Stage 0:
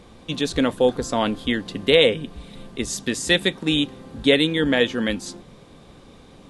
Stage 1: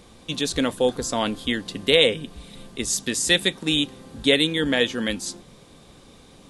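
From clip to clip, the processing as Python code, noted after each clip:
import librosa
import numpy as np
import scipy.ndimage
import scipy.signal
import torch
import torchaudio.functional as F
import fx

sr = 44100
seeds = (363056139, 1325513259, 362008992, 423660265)

y = fx.high_shelf(x, sr, hz=4200.0, db=10.5)
y = F.gain(torch.from_numpy(y), -3.0).numpy()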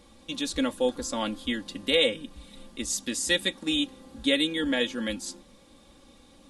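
y = x + 0.7 * np.pad(x, (int(3.6 * sr / 1000.0), 0))[:len(x)]
y = F.gain(torch.from_numpy(y), -7.5).numpy()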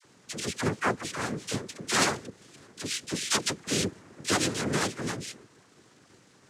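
y = fx.noise_vocoder(x, sr, seeds[0], bands=3)
y = fx.dispersion(y, sr, late='lows', ms=45.0, hz=750.0)
y = F.gain(torch.from_numpy(y), -2.0).numpy()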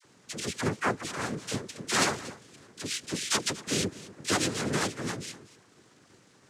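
y = x + 10.0 ** (-18.0 / 20.0) * np.pad(x, (int(238 * sr / 1000.0), 0))[:len(x)]
y = F.gain(torch.from_numpy(y), -1.0).numpy()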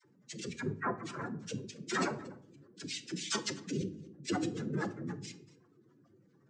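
y = fx.spec_expand(x, sr, power=2.6)
y = fx.room_shoebox(y, sr, seeds[1], volume_m3=770.0, walls='furnished', distance_m=0.77)
y = F.gain(torch.from_numpy(y), -6.5).numpy()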